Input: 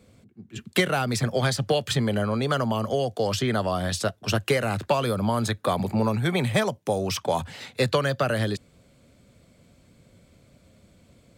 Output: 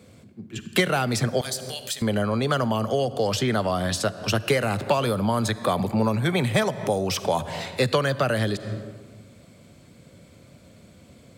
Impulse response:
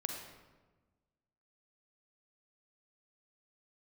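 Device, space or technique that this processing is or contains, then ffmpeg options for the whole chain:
ducked reverb: -filter_complex "[0:a]highpass=78,asettb=1/sr,asplit=3[a][b][c];[a]atrim=end=1.414[d];[b]atrim=start=1.41:end=2.02,asetpts=PTS-STARTPTS,afade=t=in:d=0.004:c=qsin,afade=t=out:st=0.606:d=0.004:c=qsin,aderivative[e];[c]atrim=start=2.016[f];[d][e]acrossfade=d=0.004:c1=hsin:c2=qsin[g];[g][f]acrossfade=d=0.004:c1=qsin:c2=hsin,asplit=3[h][i][j];[1:a]atrim=start_sample=2205[k];[i][k]afir=irnorm=-1:irlink=0[l];[j]apad=whole_len=501544[m];[l][m]sidechaincompress=threshold=-40dB:ratio=4:attack=16:release=139,volume=0.5dB[n];[h][n]amix=inputs=2:normalize=0"

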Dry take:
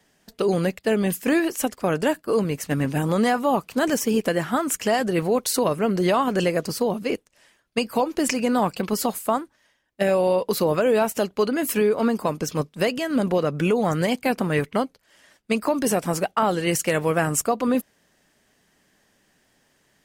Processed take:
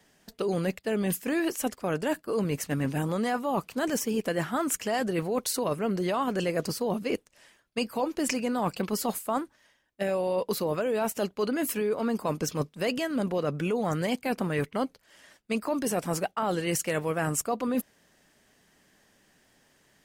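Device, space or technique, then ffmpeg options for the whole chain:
compression on the reversed sound: -af "areverse,acompressor=threshold=-25dB:ratio=6,areverse"

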